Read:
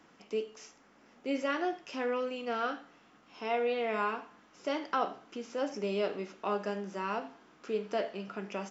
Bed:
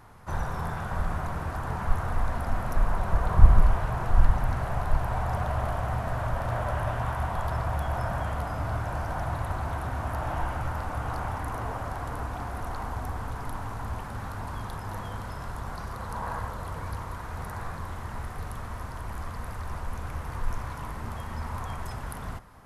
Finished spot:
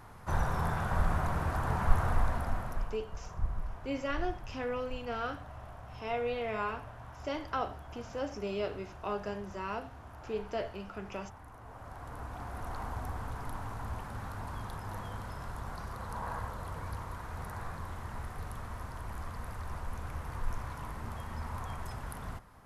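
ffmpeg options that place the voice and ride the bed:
ffmpeg -i stem1.wav -i stem2.wav -filter_complex "[0:a]adelay=2600,volume=-3dB[link_01];[1:a]volume=13.5dB,afade=type=out:start_time=2.06:duration=0.91:silence=0.11885,afade=type=in:start_time=11.61:duration=1.19:silence=0.211349[link_02];[link_01][link_02]amix=inputs=2:normalize=0" out.wav

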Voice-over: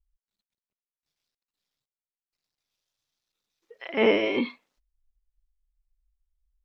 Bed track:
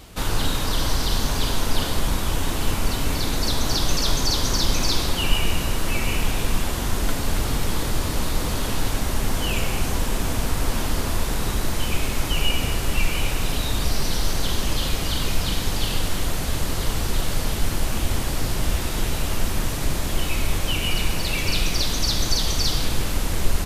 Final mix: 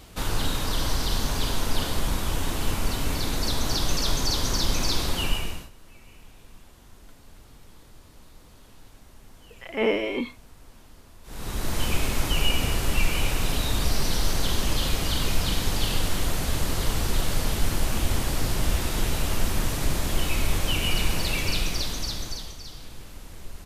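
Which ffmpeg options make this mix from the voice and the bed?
ffmpeg -i stem1.wav -i stem2.wav -filter_complex "[0:a]adelay=5800,volume=-2.5dB[link_01];[1:a]volume=22dB,afade=type=out:start_time=5.21:duration=0.49:silence=0.0668344,afade=type=in:start_time=11.23:duration=0.59:silence=0.0530884,afade=type=out:start_time=21.21:duration=1.36:silence=0.133352[link_02];[link_01][link_02]amix=inputs=2:normalize=0" out.wav

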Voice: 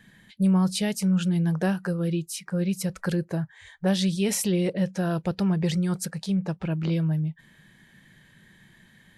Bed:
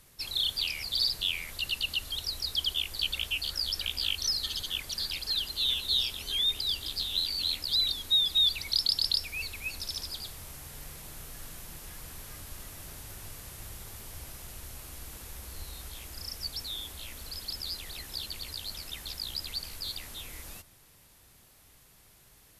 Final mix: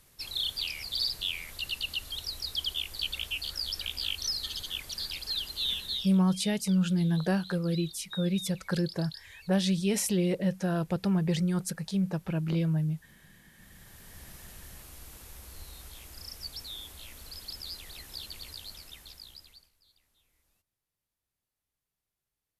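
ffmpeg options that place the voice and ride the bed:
ffmpeg -i stem1.wav -i stem2.wav -filter_complex "[0:a]adelay=5650,volume=-3dB[link_01];[1:a]volume=11.5dB,afade=type=out:start_time=5.74:duration=0.47:silence=0.16788,afade=type=in:start_time=13.52:duration=0.84:silence=0.199526,afade=type=out:start_time=18.47:duration=1.24:silence=0.0501187[link_02];[link_01][link_02]amix=inputs=2:normalize=0" out.wav

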